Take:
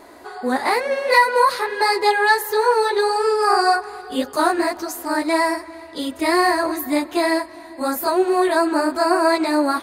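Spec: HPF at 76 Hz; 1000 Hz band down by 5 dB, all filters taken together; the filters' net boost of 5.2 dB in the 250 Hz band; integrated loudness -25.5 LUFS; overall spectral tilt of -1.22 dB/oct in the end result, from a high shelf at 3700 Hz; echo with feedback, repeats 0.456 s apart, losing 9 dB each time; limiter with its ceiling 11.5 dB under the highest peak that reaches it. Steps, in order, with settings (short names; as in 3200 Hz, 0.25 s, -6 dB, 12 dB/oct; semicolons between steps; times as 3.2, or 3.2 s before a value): HPF 76 Hz; bell 250 Hz +8 dB; bell 1000 Hz -6.5 dB; high shelf 3700 Hz -5 dB; limiter -16 dBFS; feedback echo 0.456 s, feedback 35%, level -9 dB; gain -2 dB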